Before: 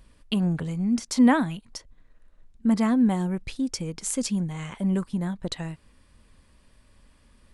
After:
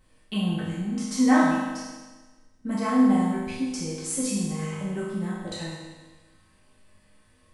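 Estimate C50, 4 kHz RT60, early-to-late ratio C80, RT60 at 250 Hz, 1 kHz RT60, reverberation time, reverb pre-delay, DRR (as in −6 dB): −0.5 dB, 1.3 s, 2.0 dB, 1.3 s, 1.3 s, 1.3 s, 4 ms, −10.0 dB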